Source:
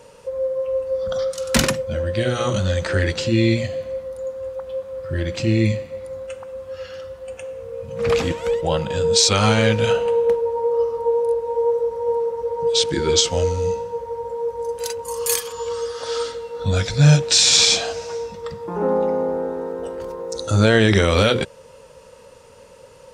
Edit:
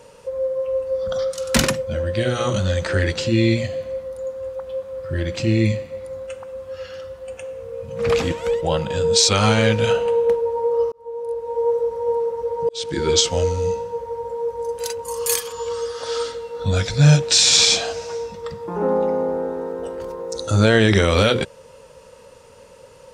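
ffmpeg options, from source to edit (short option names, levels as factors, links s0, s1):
-filter_complex "[0:a]asplit=3[s0][s1][s2];[s0]atrim=end=10.92,asetpts=PTS-STARTPTS,afade=t=out:st=10.916:d=0.004:c=hsin[s3];[s1]atrim=start=10.92:end=12.69,asetpts=PTS-STARTPTS,afade=t=in:d=0.79,afade=t=out:st=1.766:d=0.004:c=hsin[s4];[s2]atrim=start=12.69,asetpts=PTS-STARTPTS,afade=t=in:d=0.34[s5];[s3][s4][s5]concat=n=3:v=0:a=1"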